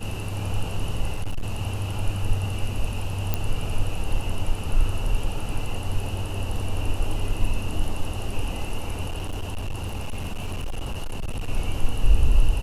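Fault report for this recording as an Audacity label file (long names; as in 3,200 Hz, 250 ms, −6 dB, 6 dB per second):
1.140000	1.550000	clipping −21.5 dBFS
3.340000	3.340000	click −9 dBFS
9.080000	11.490000	clipping −24.5 dBFS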